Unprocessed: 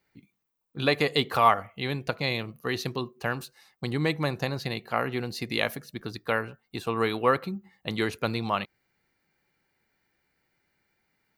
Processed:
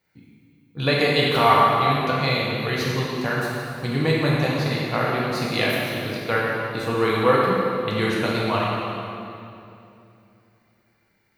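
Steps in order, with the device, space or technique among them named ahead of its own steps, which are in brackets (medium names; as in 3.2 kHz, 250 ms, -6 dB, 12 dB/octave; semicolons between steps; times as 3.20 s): stairwell (reverberation RT60 2.7 s, pre-delay 3 ms, DRR -6 dB)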